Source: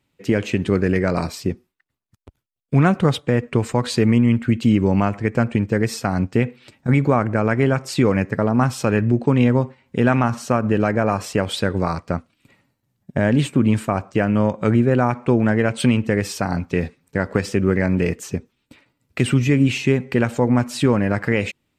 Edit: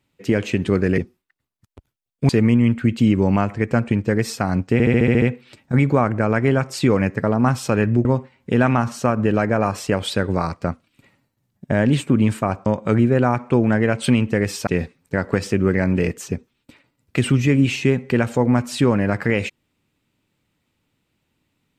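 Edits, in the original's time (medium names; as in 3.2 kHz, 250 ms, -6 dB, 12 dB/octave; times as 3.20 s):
0.98–1.48 s: delete
2.79–3.93 s: delete
6.37 s: stutter 0.07 s, 8 plays
9.20–9.51 s: delete
14.12–14.42 s: delete
16.43–16.69 s: delete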